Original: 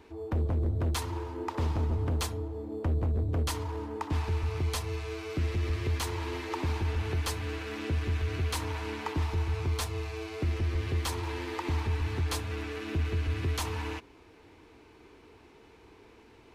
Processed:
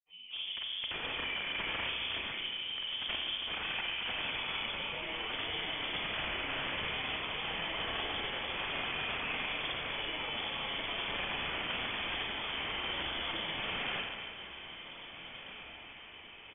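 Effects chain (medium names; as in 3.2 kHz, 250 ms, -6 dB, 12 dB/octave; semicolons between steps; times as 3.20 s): fade-in on the opening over 0.55 s; high-pass 280 Hz 12 dB/octave; static phaser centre 1.9 kHz, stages 6; comb 6.4 ms, depth 34%; integer overflow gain 37 dB; granulator, pitch spread up and down by 3 st; echo that smears into a reverb 1663 ms, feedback 44%, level -12.5 dB; Schroeder reverb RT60 1.8 s, combs from 30 ms, DRR 1.5 dB; frequency inversion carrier 3.4 kHz; trim +7 dB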